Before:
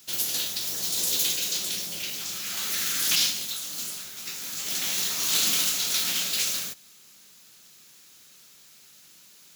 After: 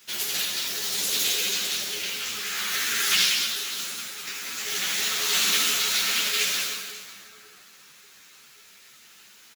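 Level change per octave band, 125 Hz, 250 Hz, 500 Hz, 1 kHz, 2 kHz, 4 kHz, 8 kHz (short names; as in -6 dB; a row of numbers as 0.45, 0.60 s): -3.0, 0.0, +4.5, +6.5, +7.5, +3.0, 0.0 dB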